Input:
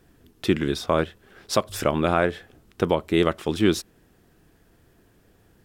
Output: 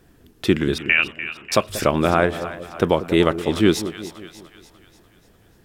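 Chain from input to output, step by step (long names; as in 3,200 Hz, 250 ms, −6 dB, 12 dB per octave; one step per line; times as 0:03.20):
0:00.78–0:01.52: voice inversion scrambler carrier 2,900 Hz
echo with a time of its own for lows and highs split 690 Hz, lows 186 ms, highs 295 ms, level −12.5 dB
level +3.5 dB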